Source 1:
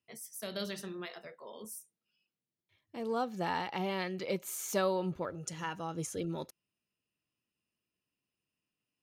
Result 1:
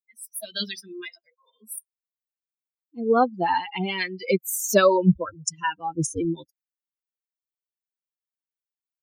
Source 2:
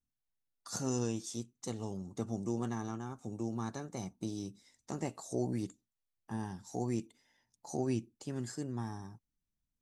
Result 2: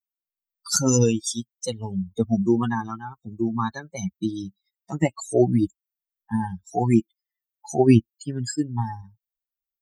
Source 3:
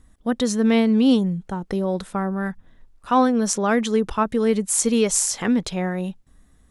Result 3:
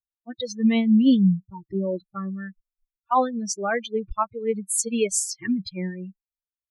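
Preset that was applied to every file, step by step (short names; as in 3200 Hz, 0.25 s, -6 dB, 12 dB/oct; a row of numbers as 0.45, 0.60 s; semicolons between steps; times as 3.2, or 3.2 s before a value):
per-bin expansion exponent 3; spectral noise reduction 10 dB; dynamic EQ 190 Hz, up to +7 dB, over -43 dBFS, Q 4.6; match loudness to -24 LUFS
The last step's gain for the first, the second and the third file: +18.0, +22.0, +1.5 dB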